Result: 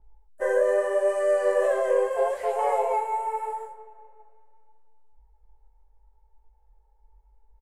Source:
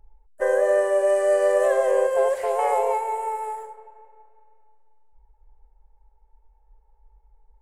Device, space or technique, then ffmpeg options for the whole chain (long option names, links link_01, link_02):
double-tracked vocal: -filter_complex "[0:a]asplit=2[link_01][link_02];[link_02]adelay=16,volume=-12dB[link_03];[link_01][link_03]amix=inputs=2:normalize=0,flanger=delay=18.5:depth=7.7:speed=0.78,adynamicequalizer=threshold=0.00631:dfrequency=4500:dqfactor=0.7:tfrequency=4500:tqfactor=0.7:attack=5:release=100:ratio=0.375:range=2:mode=cutabove:tftype=highshelf"